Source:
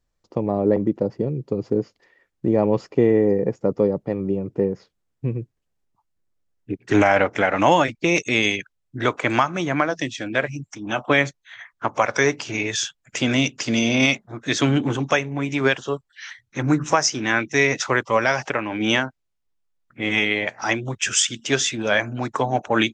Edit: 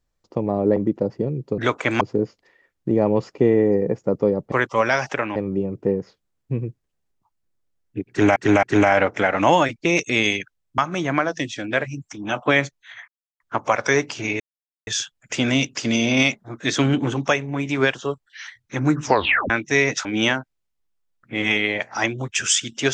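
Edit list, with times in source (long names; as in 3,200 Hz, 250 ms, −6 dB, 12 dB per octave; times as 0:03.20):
0:06.82–0:07.09: repeat, 3 plays
0:08.97–0:09.40: move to 0:01.58
0:11.70: splice in silence 0.32 s
0:12.70: splice in silence 0.47 s
0:16.86: tape stop 0.47 s
0:17.88–0:18.72: move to 0:04.09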